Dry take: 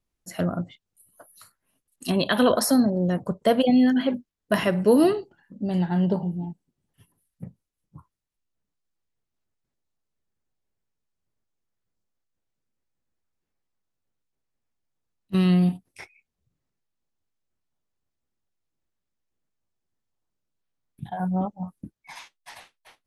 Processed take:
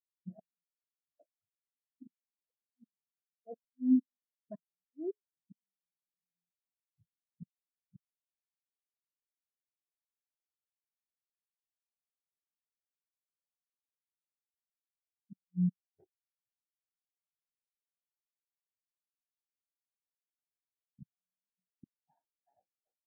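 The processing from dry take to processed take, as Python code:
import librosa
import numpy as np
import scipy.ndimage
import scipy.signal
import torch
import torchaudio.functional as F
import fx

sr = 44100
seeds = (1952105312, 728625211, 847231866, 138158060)

y = fx.wiener(x, sr, points=41)
y = scipy.signal.sosfilt(scipy.signal.butter(2, 1700.0, 'lowpass', fs=sr, output='sos'), y)
y = fx.low_shelf(y, sr, hz=80.0, db=-10.5)
y = fx.over_compress(y, sr, threshold_db=-32.0, ratio=-1.0)
y = fx.gate_flip(y, sr, shuts_db=-29.0, range_db=-40)
y = fx.spectral_expand(y, sr, expansion=2.5)
y = y * 10.0 ** (7.5 / 20.0)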